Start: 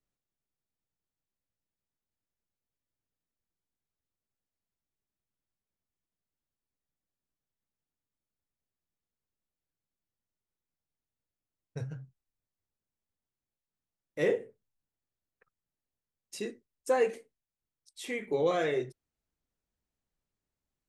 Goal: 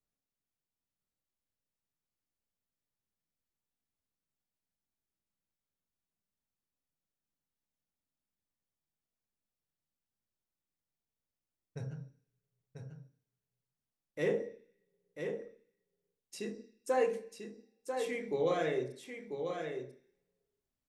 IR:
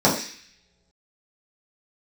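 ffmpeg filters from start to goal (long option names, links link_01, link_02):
-filter_complex "[0:a]aecho=1:1:992:0.473,asplit=2[link_01][link_02];[1:a]atrim=start_sample=2205,adelay=28[link_03];[link_02][link_03]afir=irnorm=-1:irlink=0,volume=-28dB[link_04];[link_01][link_04]amix=inputs=2:normalize=0,volume=-4.5dB"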